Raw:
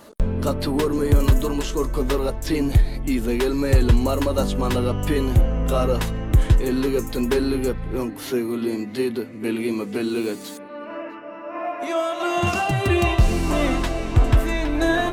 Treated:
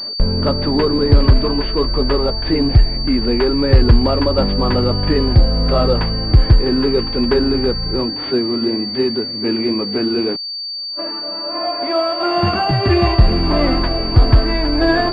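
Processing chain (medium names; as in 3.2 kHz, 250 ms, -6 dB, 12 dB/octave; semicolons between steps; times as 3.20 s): 10.36–10.99 s: gate -29 dBFS, range -50 dB; class-D stage that switches slowly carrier 4.6 kHz; trim +5.5 dB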